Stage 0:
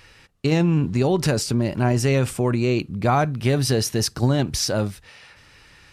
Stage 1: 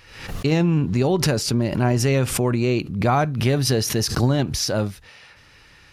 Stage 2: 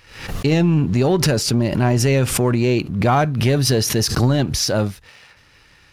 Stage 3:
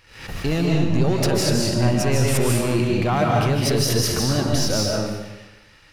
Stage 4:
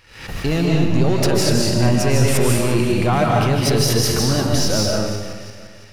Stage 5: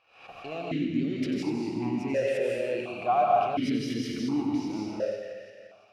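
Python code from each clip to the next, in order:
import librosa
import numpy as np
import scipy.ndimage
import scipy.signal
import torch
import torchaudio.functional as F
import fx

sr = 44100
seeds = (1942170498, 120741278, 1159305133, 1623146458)

y1 = fx.peak_eq(x, sr, hz=8200.0, db=-6.5, octaves=0.23)
y1 = fx.pre_swell(y1, sr, db_per_s=76.0)
y2 = fx.leveller(y1, sr, passes=1)
y3 = 10.0 ** (-10.5 / 20.0) * np.tanh(y2 / 10.0 ** (-10.5 / 20.0))
y3 = fx.rev_freeverb(y3, sr, rt60_s=1.1, hf_ratio=0.95, predelay_ms=110, drr_db=-2.0)
y3 = F.gain(torch.from_numpy(y3), -4.5).numpy()
y4 = fx.reverse_delay_fb(y3, sr, ms=172, feedback_pct=63, wet_db=-13.0)
y4 = F.gain(torch.from_numpy(y4), 2.5).numpy()
y5 = y4 + 10.0 ** (-9.5 / 20.0) * np.pad(y4, (int(92 * sr / 1000.0), 0))[:len(y4)]
y5 = fx.vowel_held(y5, sr, hz=1.4)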